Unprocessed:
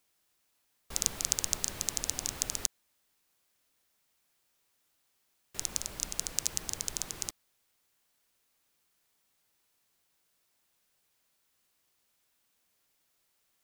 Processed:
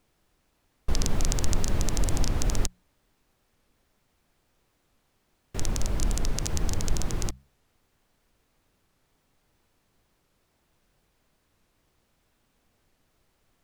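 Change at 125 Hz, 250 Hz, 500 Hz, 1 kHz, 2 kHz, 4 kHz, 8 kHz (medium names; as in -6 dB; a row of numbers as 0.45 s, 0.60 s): +20.0 dB, +15.5 dB, +12.0 dB, +9.0 dB, +4.5 dB, -0.5 dB, -3.0 dB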